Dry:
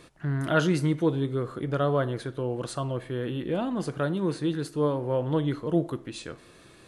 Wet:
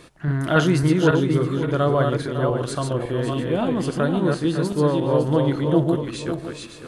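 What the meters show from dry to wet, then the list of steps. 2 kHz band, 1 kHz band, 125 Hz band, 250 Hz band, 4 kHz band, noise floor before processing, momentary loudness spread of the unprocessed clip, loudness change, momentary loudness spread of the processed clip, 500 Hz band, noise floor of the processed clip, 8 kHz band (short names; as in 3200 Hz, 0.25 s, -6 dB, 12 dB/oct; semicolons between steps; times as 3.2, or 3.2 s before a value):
+7.0 dB, +7.0 dB, +7.5 dB, +7.0 dB, +7.0 dB, -53 dBFS, 7 LU, +7.0 dB, 7 LU, +7.0 dB, -41 dBFS, +7.0 dB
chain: regenerating reverse delay 0.278 s, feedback 45%, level -3 dB; gain +5 dB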